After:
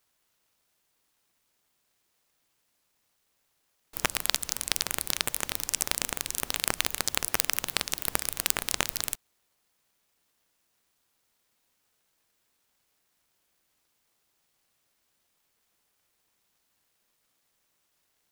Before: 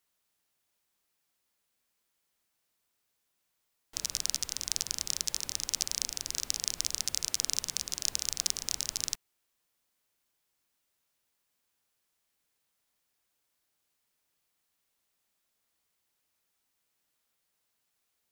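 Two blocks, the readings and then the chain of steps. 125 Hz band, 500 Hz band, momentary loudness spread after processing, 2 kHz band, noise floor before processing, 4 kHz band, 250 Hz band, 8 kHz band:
+7.5 dB, +13.5 dB, 4 LU, +13.5 dB, -80 dBFS, +1.5 dB, +10.5 dB, +0.5 dB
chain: high shelf 10000 Hz +9 dB; noise-modulated delay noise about 1500 Hz, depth 0.088 ms; gain +2 dB

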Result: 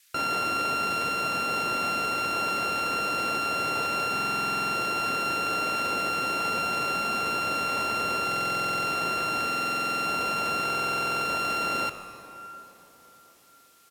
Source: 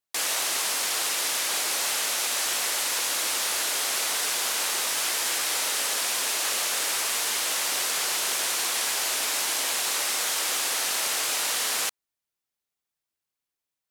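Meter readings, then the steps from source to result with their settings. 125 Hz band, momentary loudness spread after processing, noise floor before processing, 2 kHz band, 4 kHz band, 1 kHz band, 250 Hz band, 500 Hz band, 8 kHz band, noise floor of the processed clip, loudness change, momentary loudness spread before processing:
n/a, 0 LU, under -85 dBFS, +1.0 dB, -6.5 dB, +7.5 dB, +11.0 dB, +4.0 dB, -16.0 dB, -56 dBFS, -2.0 dB, 0 LU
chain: sample sorter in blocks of 32 samples; HPF 100 Hz; RIAA curve playback; frequency-shifting echo 0.149 s, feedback 50%, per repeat -97 Hz, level -18.5 dB; plate-style reverb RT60 4.8 s, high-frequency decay 0.55×, DRR 11 dB; band noise 1600–15000 Hz -63 dBFS; stuck buffer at 4.14/8.27/9.46/10.64, samples 2048, times 12; gain +2 dB

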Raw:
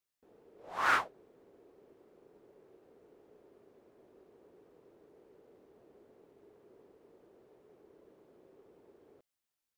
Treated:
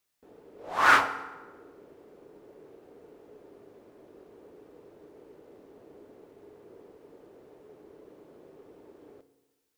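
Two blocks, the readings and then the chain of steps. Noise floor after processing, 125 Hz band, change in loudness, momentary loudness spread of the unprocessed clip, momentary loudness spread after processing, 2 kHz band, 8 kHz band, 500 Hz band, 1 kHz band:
-75 dBFS, +8.5 dB, +8.5 dB, 16 LU, 17 LU, +9.0 dB, +9.0 dB, +9.0 dB, +9.0 dB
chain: FDN reverb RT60 1.2 s, low-frequency decay 1×, high-frequency decay 0.7×, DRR 10 dB; gain +8.5 dB

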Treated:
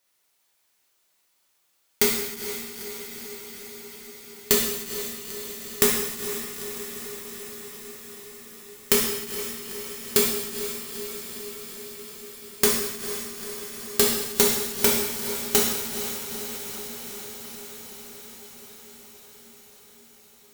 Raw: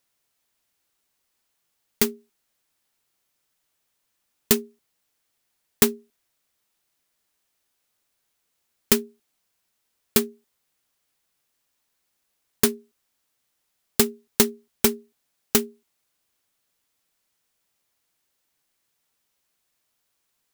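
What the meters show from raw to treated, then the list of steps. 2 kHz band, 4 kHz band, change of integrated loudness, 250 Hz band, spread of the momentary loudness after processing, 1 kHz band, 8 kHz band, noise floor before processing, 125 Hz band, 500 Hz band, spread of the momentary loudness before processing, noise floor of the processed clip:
+3.5 dB, +3.5 dB, -2.5 dB, -3.5 dB, 20 LU, +3.0 dB, +3.5 dB, -76 dBFS, -1.5 dB, +2.0 dB, 5 LU, -69 dBFS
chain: low shelf 290 Hz -8 dB; compressor, threshold -18 dBFS, peak gain reduction 6.5 dB; diffused feedback echo 0.457 s, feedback 75%, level -9.5 dB; non-linear reverb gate 0.34 s falling, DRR -3.5 dB; gain +1 dB

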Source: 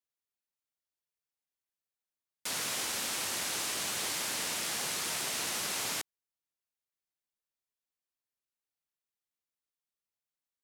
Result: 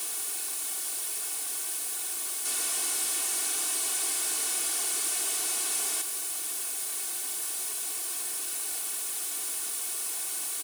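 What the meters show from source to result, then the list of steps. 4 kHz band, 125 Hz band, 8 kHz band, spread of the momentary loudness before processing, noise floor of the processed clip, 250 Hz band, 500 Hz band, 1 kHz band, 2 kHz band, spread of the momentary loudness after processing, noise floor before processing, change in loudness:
+2.0 dB, under -20 dB, +10.0 dB, 3 LU, -34 dBFS, -0.5 dB, +0.5 dB, +0.5 dB, 0.0 dB, 4 LU, under -85 dBFS, +4.0 dB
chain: infinite clipping; HPF 250 Hz 24 dB/oct; bell 9500 Hz +13 dB 0.66 oct; notch 1900 Hz, Q 15; comb 2.7 ms, depth 88%; gain +2 dB

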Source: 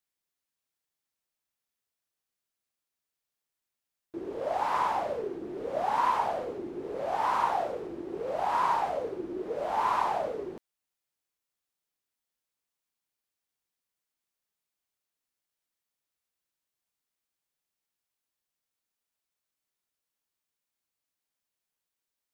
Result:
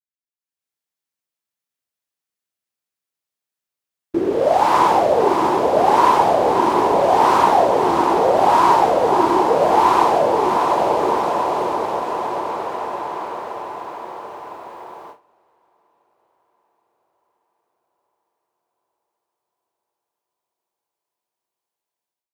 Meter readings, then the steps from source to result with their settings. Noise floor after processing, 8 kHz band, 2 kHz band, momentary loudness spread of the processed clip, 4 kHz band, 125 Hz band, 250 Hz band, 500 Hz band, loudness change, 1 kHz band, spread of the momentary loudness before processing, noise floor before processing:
under -85 dBFS, n/a, +13.0 dB, 16 LU, +16.5 dB, +18.0 dB, +18.5 dB, +17.5 dB, +14.0 dB, +15.5 dB, 11 LU, under -85 dBFS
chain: on a send: diffused feedback echo 0.65 s, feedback 63%, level -4 dB; on the sum: AGC gain up to 15.5 dB; HPF 73 Hz; dynamic EQ 1600 Hz, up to -6 dB, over -29 dBFS, Q 0.74; gate with hold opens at -21 dBFS; gain +3.5 dB

